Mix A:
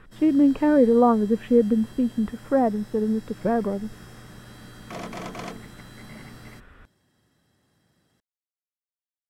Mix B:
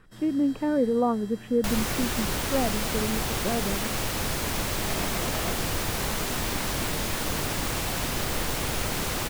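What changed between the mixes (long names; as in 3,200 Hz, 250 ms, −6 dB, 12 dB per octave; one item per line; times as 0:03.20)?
speech −6.5 dB
second sound: unmuted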